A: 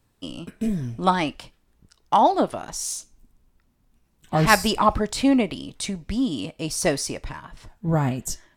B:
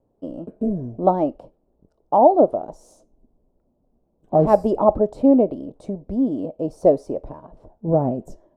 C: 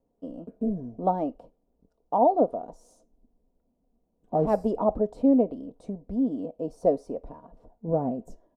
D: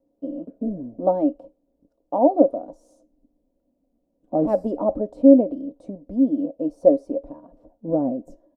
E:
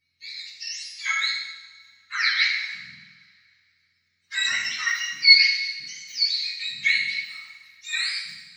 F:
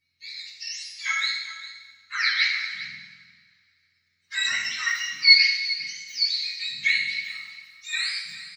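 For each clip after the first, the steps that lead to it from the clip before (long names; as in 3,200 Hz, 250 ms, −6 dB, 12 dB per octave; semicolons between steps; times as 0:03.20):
drawn EQ curve 110 Hz 0 dB, 610 Hz +15 dB, 1,900 Hz −22 dB; level −4.5 dB
comb filter 4.2 ms, depth 42%; level −7.5 dB
hollow resonant body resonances 300/550 Hz, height 17 dB, ringing for 65 ms; level −4 dB
frequency axis turned over on the octave scale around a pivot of 1,100 Hz; coupled-rooms reverb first 0.98 s, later 2.7 s, from −19 dB, DRR −3 dB; level −2.5 dB
single-tap delay 400 ms −14.5 dB; level −1 dB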